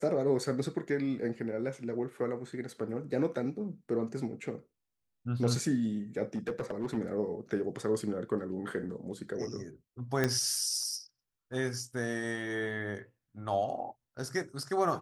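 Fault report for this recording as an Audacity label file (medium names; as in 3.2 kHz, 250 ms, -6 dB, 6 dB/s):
6.350000	6.970000	clipped -28.5 dBFS
10.240000	10.240000	pop -14 dBFS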